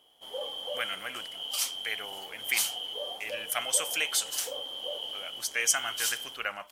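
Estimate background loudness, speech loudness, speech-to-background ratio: -36.5 LUFS, -30.5 LUFS, 6.0 dB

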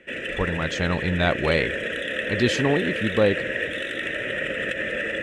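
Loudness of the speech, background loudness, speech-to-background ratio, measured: -24.5 LUFS, -27.0 LUFS, 2.5 dB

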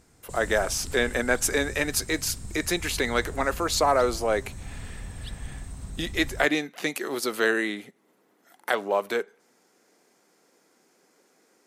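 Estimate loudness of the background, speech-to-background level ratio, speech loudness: -40.5 LUFS, 14.5 dB, -26.0 LUFS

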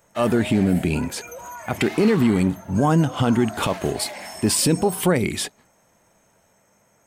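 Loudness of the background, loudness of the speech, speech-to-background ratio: -36.0 LUFS, -21.0 LUFS, 15.0 dB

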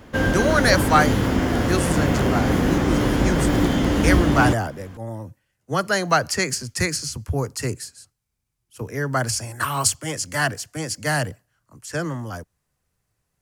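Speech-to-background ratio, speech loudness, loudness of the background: -3.5 dB, -24.0 LUFS, -20.5 LUFS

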